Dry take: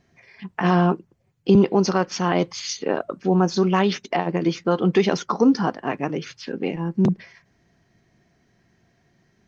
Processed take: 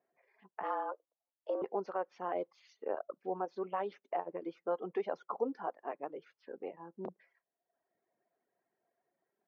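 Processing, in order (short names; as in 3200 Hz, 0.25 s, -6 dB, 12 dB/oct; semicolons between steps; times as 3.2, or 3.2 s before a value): ladder band-pass 700 Hz, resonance 30%; 0.63–1.62 frequency shift +140 Hz; reverb removal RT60 0.86 s; gain -2 dB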